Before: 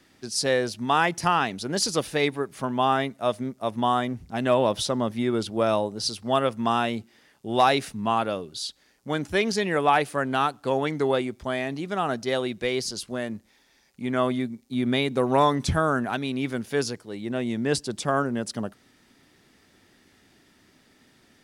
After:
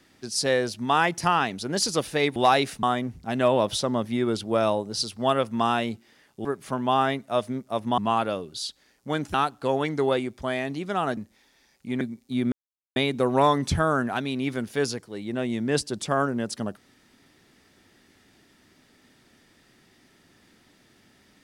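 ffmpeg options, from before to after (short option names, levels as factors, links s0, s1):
-filter_complex "[0:a]asplit=9[s0][s1][s2][s3][s4][s5][s6][s7][s8];[s0]atrim=end=2.362[s9];[s1]atrim=start=7.508:end=7.982[s10];[s2]atrim=start=3.888:end=7.512[s11];[s3]atrim=start=2.358:end=3.892[s12];[s4]atrim=start=7.978:end=9.342[s13];[s5]atrim=start=10.358:end=12.192[s14];[s6]atrim=start=13.308:end=14.152[s15];[s7]atrim=start=14.418:end=14.93,asetpts=PTS-STARTPTS,afade=t=out:st=0.508:d=0.004:c=hsin,apad=pad_dur=0.44[s16];[s8]atrim=start=14.93,asetpts=PTS-STARTPTS,afade=t=in:d=0.004:c=hsin[s17];[s9][s10]acrossfade=d=0.004:c1=hsin:c2=hsin[s18];[s18][s11]acrossfade=d=0.004:c1=hsin:c2=hsin[s19];[s19][s12]acrossfade=d=0.004:c1=hsin:c2=hsin[s20];[s20][s13]acrossfade=d=0.004:c1=hsin:c2=hsin[s21];[s21][s14]acrossfade=d=0.004:c1=hsin:c2=hsin[s22];[s22][s15]acrossfade=d=0.004:c1=hsin:c2=hsin[s23];[s16][s17]concat=n=2:v=0:a=1[s24];[s23][s24]acrossfade=d=0.004:c1=hsin:c2=hsin"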